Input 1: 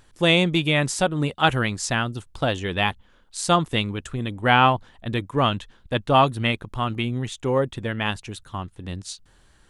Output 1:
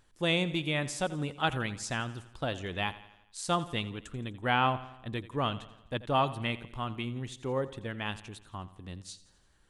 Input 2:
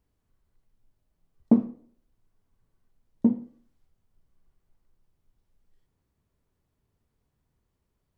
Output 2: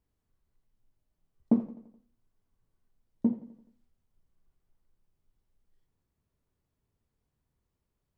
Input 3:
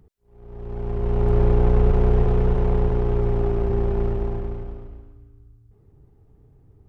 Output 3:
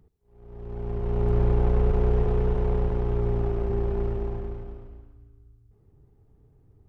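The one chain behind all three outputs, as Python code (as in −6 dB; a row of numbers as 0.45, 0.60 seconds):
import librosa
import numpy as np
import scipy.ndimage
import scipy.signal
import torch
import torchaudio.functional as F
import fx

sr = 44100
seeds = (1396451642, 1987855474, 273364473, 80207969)

y = fx.echo_feedback(x, sr, ms=85, feedback_pct=54, wet_db=-16.5)
y = y * 10.0 ** (-12 / 20.0) / np.max(np.abs(y))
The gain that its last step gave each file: −10.5, −5.0, −4.5 decibels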